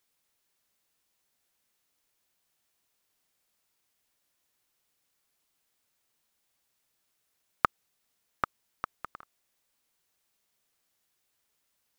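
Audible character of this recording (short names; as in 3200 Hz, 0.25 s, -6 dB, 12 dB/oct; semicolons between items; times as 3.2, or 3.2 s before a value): noise floor -78 dBFS; spectral tilt -2.0 dB/oct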